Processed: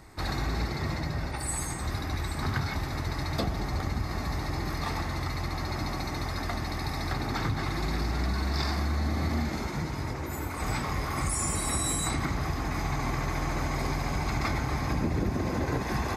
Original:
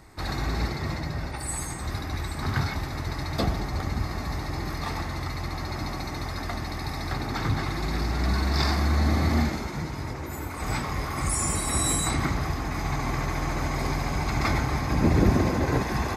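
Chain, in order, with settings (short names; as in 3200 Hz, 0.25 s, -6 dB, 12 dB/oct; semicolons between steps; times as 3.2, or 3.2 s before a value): compressor, threshold -25 dBFS, peak gain reduction 10.5 dB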